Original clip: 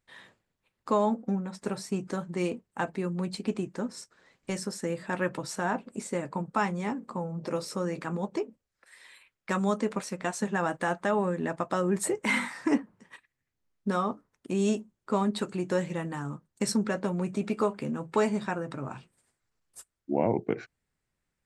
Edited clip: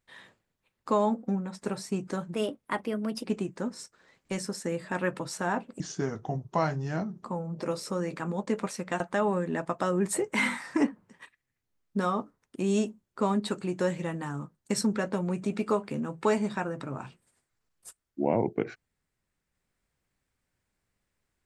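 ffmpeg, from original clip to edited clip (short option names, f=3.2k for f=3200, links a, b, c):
-filter_complex "[0:a]asplit=7[a][b][c][d][e][f][g];[a]atrim=end=2.344[h];[b]atrim=start=2.34:end=3.42,asetpts=PTS-STARTPTS,asetrate=52920,aresample=44100[i];[c]atrim=start=3.416:end=5.984[j];[d]atrim=start=5.98:end=7.09,asetpts=PTS-STARTPTS,asetrate=33957,aresample=44100[k];[e]atrim=start=7.086:end=8.322[l];[f]atrim=start=9.798:end=10.332[m];[g]atrim=start=10.908[n];[h][i]acrossfade=d=0.004:c1=hsin:c2=hsin[o];[o][j]acrossfade=d=0.004:c1=hsin:c2=hsin[p];[p][k]acrossfade=d=0.004:c1=hsin:c2=hsin[q];[q][l]acrossfade=d=0.004:c1=hsin:c2=hsin[r];[r][m]acrossfade=d=0.004:c1=hsin:c2=hsin[s];[s][n]acrossfade=d=0.004:c1=hsin:c2=hsin"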